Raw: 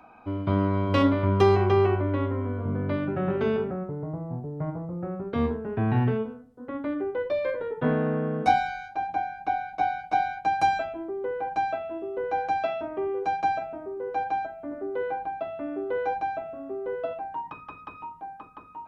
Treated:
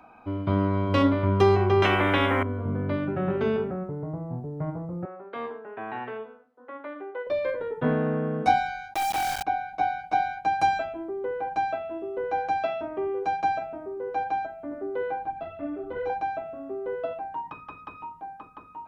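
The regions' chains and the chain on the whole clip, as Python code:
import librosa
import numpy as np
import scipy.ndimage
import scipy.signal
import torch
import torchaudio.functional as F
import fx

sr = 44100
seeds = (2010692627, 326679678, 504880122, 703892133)

y = fx.chain(x, sr, fx.peak_eq(hz=4400.0, db=-15.0, octaves=0.47),
    fx.small_body(hz=(310.0, 3600.0), ring_ms=45, db=12),
    fx.spectral_comp(ratio=4.0), at=(1.82, 2.43))
y = fx.chain(y, sr, fx.bandpass_edges(low_hz=630.0, high_hz=2900.0),
    fx.echo_single(ms=112, db=-17.0), at=(5.05, 7.27))
y = fx.chain(y, sr, fx.hum_notches(base_hz=60, count=5),
    fx.quant_companded(bits=2), at=(8.94, 9.43))
y = fx.chain(y, sr, fx.low_shelf(hz=170.0, db=11.0),
    fx.ensemble(), at=(15.25, 16.1))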